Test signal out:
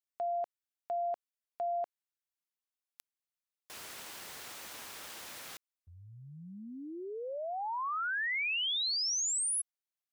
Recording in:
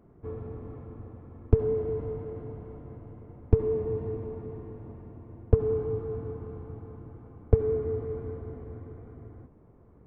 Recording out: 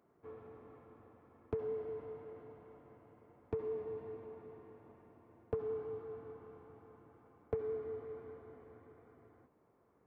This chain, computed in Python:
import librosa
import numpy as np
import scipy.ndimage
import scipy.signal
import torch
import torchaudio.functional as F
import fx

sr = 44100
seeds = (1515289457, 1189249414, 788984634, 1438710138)

y = fx.highpass(x, sr, hz=1000.0, slope=6)
y = y * librosa.db_to_amplitude(-3.5)